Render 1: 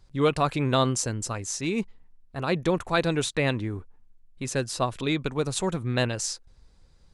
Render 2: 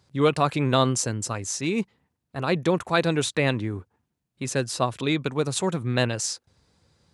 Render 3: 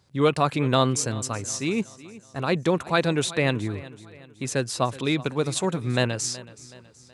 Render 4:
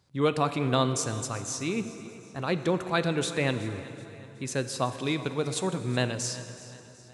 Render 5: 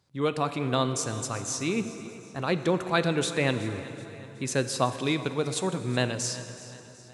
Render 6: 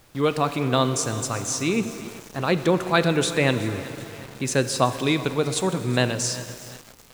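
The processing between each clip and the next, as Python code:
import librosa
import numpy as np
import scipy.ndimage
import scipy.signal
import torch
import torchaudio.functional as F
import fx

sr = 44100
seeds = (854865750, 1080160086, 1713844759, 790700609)

y1 = scipy.signal.sosfilt(scipy.signal.butter(4, 85.0, 'highpass', fs=sr, output='sos'), x)
y1 = F.gain(torch.from_numpy(y1), 2.0).numpy()
y2 = fx.echo_feedback(y1, sr, ms=374, feedback_pct=46, wet_db=-18.5)
y3 = fx.rev_plate(y2, sr, seeds[0], rt60_s=3.3, hf_ratio=0.75, predelay_ms=0, drr_db=10.0)
y3 = F.gain(torch.from_numpy(y3), -4.5).numpy()
y4 = fx.low_shelf(y3, sr, hz=61.0, db=-6.5)
y4 = fx.rider(y4, sr, range_db=10, speed_s=2.0)
y5 = np.where(np.abs(y4) >= 10.0 ** (-42.5 / 20.0), y4, 0.0)
y5 = fx.dmg_noise_colour(y5, sr, seeds[1], colour='pink', level_db=-60.0)
y5 = F.gain(torch.from_numpy(y5), 5.0).numpy()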